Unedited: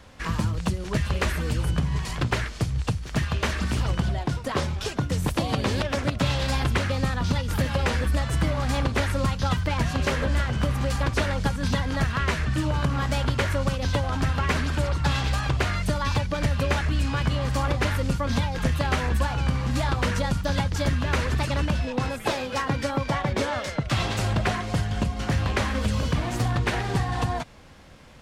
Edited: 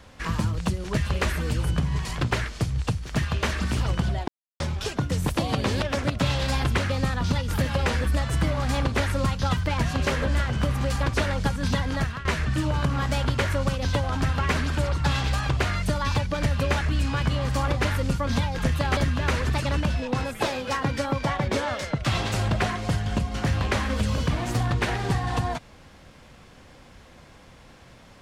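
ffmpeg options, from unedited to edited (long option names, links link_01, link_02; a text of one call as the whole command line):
ffmpeg -i in.wav -filter_complex "[0:a]asplit=5[link_01][link_02][link_03][link_04][link_05];[link_01]atrim=end=4.28,asetpts=PTS-STARTPTS,afade=type=out:start_time=4.276:duration=0.004:curve=hsin[link_06];[link_02]atrim=start=4.28:end=4.6,asetpts=PTS-STARTPTS,volume=0[link_07];[link_03]atrim=start=4.6:end=12.25,asetpts=PTS-STARTPTS,afade=type=in:duration=0.004:curve=hsin,afade=type=out:start_time=7.26:duration=0.39:curve=qsin:silence=0.149624[link_08];[link_04]atrim=start=12.25:end=18.972,asetpts=PTS-STARTPTS,afade=type=in:duration=0.004:curve=hsin:silence=0.149624[link_09];[link_05]atrim=start=20.818[link_10];[link_06][link_07][link_08][link_09]concat=n=4:v=0:a=1[link_11];[link_11][link_10]acrossfade=duration=0.004:curve1=hsin:curve2=hsin" out.wav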